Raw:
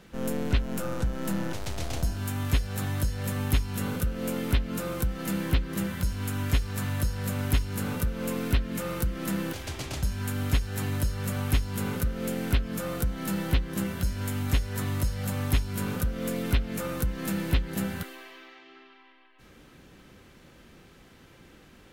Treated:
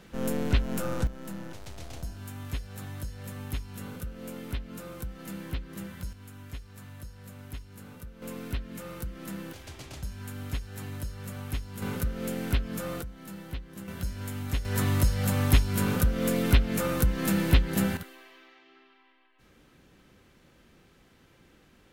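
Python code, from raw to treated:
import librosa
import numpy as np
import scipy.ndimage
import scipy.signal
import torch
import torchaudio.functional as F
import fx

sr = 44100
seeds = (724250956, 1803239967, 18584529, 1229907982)

y = fx.gain(x, sr, db=fx.steps((0.0, 0.5), (1.07, -9.5), (6.13, -16.0), (8.22, -8.5), (11.82, -2.0), (13.02, -12.5), (13.88, -5.0), (14.65, 4.0), (17.97, -6.0)))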